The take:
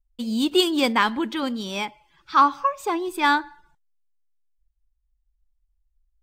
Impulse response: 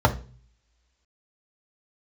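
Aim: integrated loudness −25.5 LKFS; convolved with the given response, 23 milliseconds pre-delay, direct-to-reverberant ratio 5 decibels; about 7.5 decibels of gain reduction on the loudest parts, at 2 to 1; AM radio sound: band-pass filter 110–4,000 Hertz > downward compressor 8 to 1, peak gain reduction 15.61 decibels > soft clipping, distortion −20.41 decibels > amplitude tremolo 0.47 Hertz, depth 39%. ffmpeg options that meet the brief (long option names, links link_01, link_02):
-filter_complex "[0:a]acompressor=threshold=-25dB:ratio=2,asplit=2[link_01][link_02];[1:a]atrim=start_sample=2205,adelay=23[link_03];[link_02][link_03]afir=irnorm=-1:irlink=0,volume=-23.5dB[link_04];[link_01][link_04]amix=inputs=2:normalize=0,highpass=110,lowpass=4000,acompressor=threshold=-32dB:ratio=8,asoftclip=threshold=-27dB,tremolo=f=0.47:d=0.39,volume=14dB"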